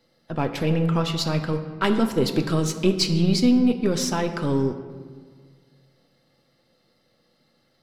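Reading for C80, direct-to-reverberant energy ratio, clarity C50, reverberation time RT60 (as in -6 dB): 10.0 dB, 6.0 dB, 9.0 dB, 1.7 s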